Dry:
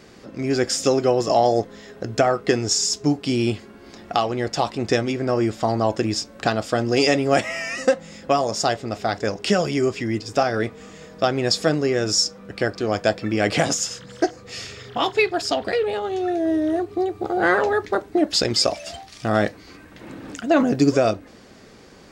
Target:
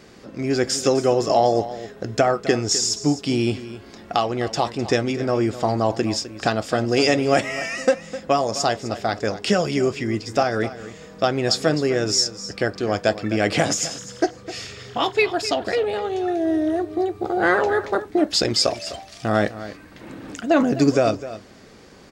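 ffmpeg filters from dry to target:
ffmpeg -i in.wav -af "aecho=1:1:256:0.188" out.wav

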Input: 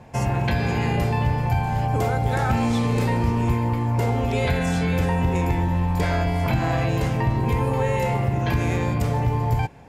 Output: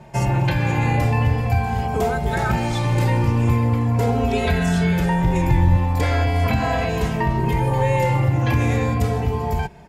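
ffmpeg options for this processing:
ffmpeg -i in.wav -filter_complex "[0:a]asettb=1/sr,asplit=3[link_01][link_02][link_03];[link_01]atrim=end=5.014[link_04];[link_02]atrim=start=5.01:end=5.76,asetpts=PTS-STARTPTS,afade=type=in:duration=0.004:curve=qsin,afade=type=out:start_time=0.746:duration=0.004:curve=qsin,asubboost=boost=11.5:cutoff=140[link_05];[link_03]atrim=start=5.756[link_06];[link_04][link_05]acrossfade=duration=0.004:curve1=hsin:curve2=qsin[link_07];[link_07][link_06]acrossfade=duration=0.004:curve1=qsin:curve2=hsin,asplit=2[link_08][link_09];[link_09]adelay=2.8,afreqshift=-0.4[link_10];[link_08][link_10]amix=inputs=2:normalize=1,volume=5.5dB" out.wav

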